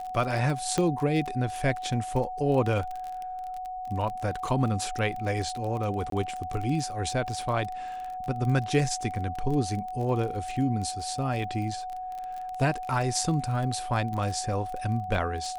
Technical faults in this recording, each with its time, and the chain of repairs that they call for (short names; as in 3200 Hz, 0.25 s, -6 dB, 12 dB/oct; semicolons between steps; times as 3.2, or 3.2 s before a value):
crackle 28/s -32 dBFS
tone 740 Hz -33 dBFS
0.78 pop -13 dBFS
6.1–6.12 gap 23 ms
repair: de-click; notch 740 Hz, Q 30; interpolate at 6.1, 23 ms